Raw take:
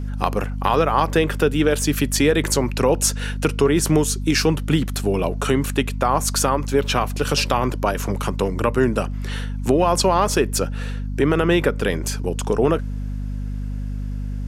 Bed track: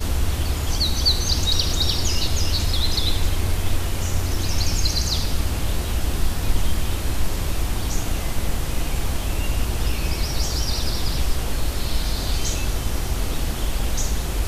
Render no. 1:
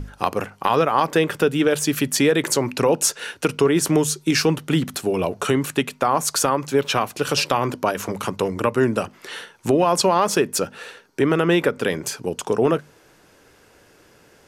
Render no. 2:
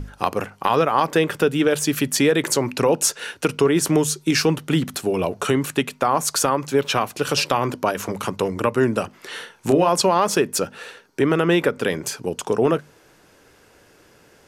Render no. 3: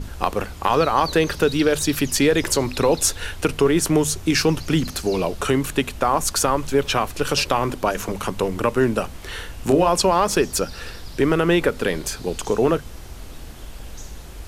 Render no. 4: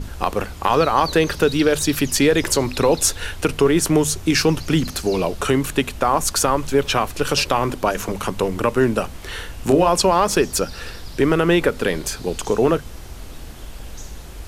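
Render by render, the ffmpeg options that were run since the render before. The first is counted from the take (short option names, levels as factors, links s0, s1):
-af "bandreject=f=50:t=h:w=6,bandreject=f=100:t=h:w=6,bandreject=f=150:t=h:w=6,bandreject=f=200:t=h:w=6,bandreject=f=250:t=h:w=6"
-filter_complex "[0:a]asettb=1/sr,asplit=3[s0][s1][s2];[s0]atrim=end=9.314[s3];[s1]atrim=start=9.31:end=9.89,asetpts=PTS-STARTPTS,afade=t=in:d=0.004:c=qsin,afade=t=out:st=0.576:d=0.004:c=qsin,asplit=2[s4][s5];[s5]adelay=30,volume=0.447[s6];[s4][s6]amix=inputs=2:normalize=0,atrim=end_sample=25578[s7];[s2]atrim=start=9.886[s8];[s3][s7]acrossfade=d=0.004:c1=hsin:c2=qsin[s9];[s9][s8]acrossfade=d=0.004:c1=qsin:c2=hsin"
-filter_complex "[1:a]volume=0.211[s0];[0:a][s0]amix=inputs=2:normalize=0"
-af "volume=1.19,alimiter=limit=0.708:level=0:latency=1"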